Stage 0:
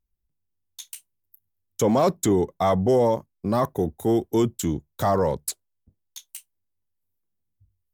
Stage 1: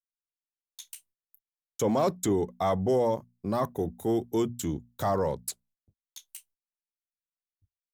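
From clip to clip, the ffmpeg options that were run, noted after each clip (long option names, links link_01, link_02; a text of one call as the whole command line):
ffmpeg -i in.wav -af "bandreject=frequency=60:width_type=h:width=6,bandreject=frequency=120:width_type=h:width=6,bandreject=frequency=180:width_type=h:width=6,bandreject=frequency=240:width_type=h:width=6,agate=range=-32dB:threshold=-57dB:ratio=16:detection=peak,volume=-5.5dB" out.wav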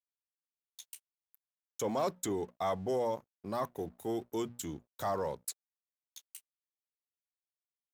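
ffmpeg -i in.wav -af "aeval=exprs='sgn(val(0))*max(abs(val(0))-0.00158,0)':channel_layout=same,lowshelf=frequency=370:gain=-8.5,volume=-4dB" out.wav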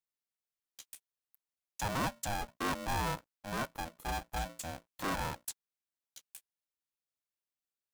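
ffmpeg -i in.wav -af "aeval=exprs='val(0)*sgn(sin(2*PI*410*n/s))':channel_layout=same,volume=-1.5dB" out.wav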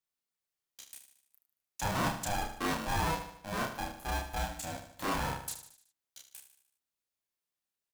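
ffmpeg -i in.wav -filter_complex "[0:a]asplit=2[link_01][link_02];[link_02]adelay=31,volume=-2.5dB[link_03];[link_01][link_03]amix=inputs=2:normalize=0,asplit=2[link_04][link_05];[link_05]aecho=0:1:75|150|225|300|375:0.316|0.158|0.0791|0.0395|0.0198[link_06];[link_04][link_06]amix=inputs=2:normalize=0" out.wav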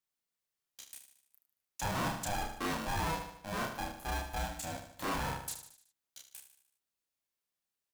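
ffmpeg -i in.wav -af "asoftclip=type=tanh:threshold=-28dB" out.wav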